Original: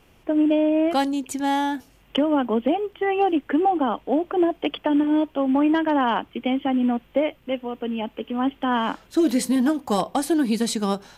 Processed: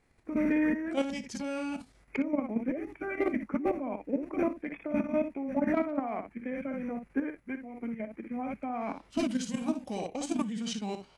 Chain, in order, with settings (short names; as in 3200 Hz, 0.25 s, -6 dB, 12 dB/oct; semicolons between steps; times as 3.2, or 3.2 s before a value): early reflections 22 ms -17.5 dB, 59 ms -7 dB; level quantiser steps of 9 dB; formant shift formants -5 st; gain -7 dB